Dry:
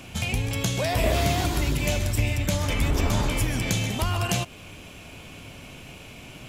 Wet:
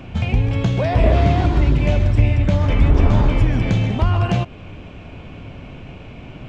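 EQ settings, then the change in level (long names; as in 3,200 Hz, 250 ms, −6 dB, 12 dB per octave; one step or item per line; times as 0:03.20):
head-to-tape spacing loss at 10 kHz 34 dB
low-shelf EQ 110 Hz +4 dB
+8.0 dB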